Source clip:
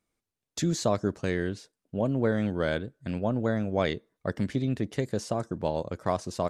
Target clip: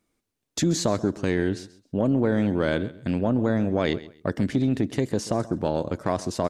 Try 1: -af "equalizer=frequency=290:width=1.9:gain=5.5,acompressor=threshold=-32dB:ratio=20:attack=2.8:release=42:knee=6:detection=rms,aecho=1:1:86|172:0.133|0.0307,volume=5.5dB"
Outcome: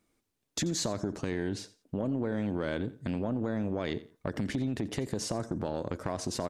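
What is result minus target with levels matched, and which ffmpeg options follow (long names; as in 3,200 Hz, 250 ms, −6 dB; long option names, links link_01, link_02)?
downward compressor: peak gain reduction +10.5 dB; echo 47 ms early
-af "equalizer=frequency=290:width=1.9:gain=5.5,acompressor=threshold=-21dB:ratio=20:attack=2.8:release=42:knee=6:detection=rms,aecho=1:1:133|266:0.133|0.0307,volume=5.5dB"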